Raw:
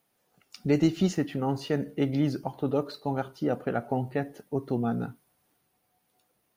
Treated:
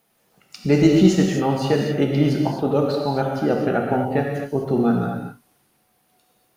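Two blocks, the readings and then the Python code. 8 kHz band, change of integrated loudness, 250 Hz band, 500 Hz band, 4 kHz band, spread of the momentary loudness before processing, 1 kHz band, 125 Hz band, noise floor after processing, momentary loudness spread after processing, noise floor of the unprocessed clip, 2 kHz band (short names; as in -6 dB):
n/a, +9.5 dB, +9.0 dB, +10.0 dB, +10.0 dB, 9 LU, +9.5 dB, +9.0 dB, -65 dBFS, 9 LU, -74 dBFS, +10.0 dB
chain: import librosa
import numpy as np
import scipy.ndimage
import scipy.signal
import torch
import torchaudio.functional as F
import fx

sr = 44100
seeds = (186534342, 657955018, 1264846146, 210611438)

y = fx.rev_gated(x, sr, seeds[0], gate_ms=280, shape='flat', drr_db=-0.5)
y = y * 10.0 ** (6.5 / 20.0)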